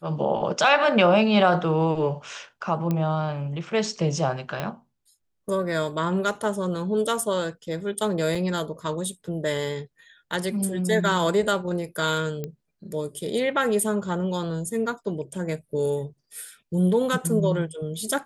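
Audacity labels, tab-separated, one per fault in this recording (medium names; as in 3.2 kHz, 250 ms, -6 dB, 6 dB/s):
2.910000	2.910000	pop -14 dBFS
4.600000	4.600000	pop -14 dBFS
8.350000	8.350000	dropout 4.4 ms
12.440000	12.440000	pop -18 dBFS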